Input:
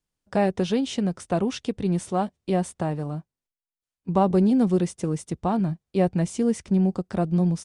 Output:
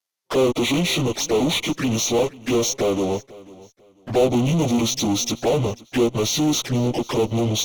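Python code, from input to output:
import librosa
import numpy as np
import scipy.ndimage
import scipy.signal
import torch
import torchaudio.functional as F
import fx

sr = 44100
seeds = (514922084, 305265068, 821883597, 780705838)

p1 = fx.pitch_bins(x, sr, semitones=-7.5)
p2 = scipy.signal.sosfilt(scipy.signal.butter(2, 460.0, 'highpass', fs=sr, output='sos'), p1)
p3 = fx.high_shelf(p2, sr, hz=7200.0, db=11.0)
p4 = fx.fuzz(p3, sr, gain_db=47.0, gate_db=-56.0)
p5 = p3 + (p4 * 10.0 ** (-11.0 / 20.0))
p6 = fx.env_flanger(p5, sr, rest_ms=11.1, full_db=-24.0)
p7 = p6 + fx.echo_feedback(p6, sr, ms=494, feedback_pct=26, wet_db=-21.0, dry=0)
y = p7 * 10.0 ** (5.0 / 20.0)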